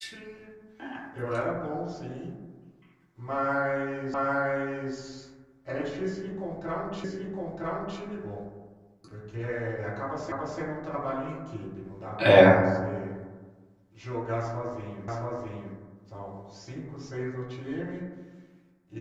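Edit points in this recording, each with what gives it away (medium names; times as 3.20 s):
4.14 s: repeat of the last 0.8 s
7.04 s: repeat of the last 0.96 s
10.32 s: repeat of the last 0.29 s
15.08 s: repeat of the last 0.67 s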